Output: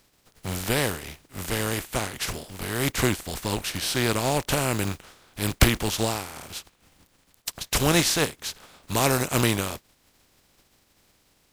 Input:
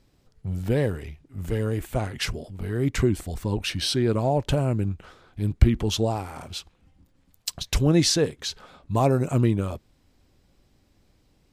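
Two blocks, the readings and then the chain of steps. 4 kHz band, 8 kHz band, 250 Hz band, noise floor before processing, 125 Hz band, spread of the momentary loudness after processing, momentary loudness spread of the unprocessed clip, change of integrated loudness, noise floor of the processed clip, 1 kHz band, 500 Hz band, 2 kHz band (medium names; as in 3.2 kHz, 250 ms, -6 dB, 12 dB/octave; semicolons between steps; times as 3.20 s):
+2.0 dB, +5.5 dB, -2.5 dB, -64 dBFS, -4.5 dB, 15 LU, 15 LU, -0.5 dB, -65 dBFS, +2.5 dB, -2.0 dB, +8.0 dB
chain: spectral contrast reduction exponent 0.45; trim -1.5 dB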